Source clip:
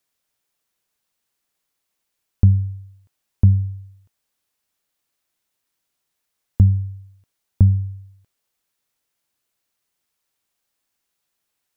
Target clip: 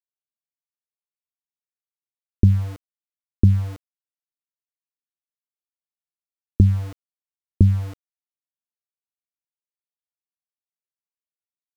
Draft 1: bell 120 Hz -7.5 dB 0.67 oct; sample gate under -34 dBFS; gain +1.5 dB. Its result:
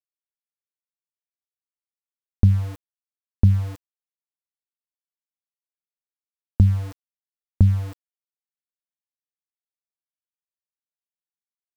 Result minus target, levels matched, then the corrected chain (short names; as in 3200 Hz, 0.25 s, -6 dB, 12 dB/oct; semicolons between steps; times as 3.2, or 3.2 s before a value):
500 Hz band -4.0 dB
synth low-pass 360 Hz, resonance Q 3; bell 120 Hz -7.5 dB 0.67 oct; sample gate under -34 dBFS; gain +1.5 dB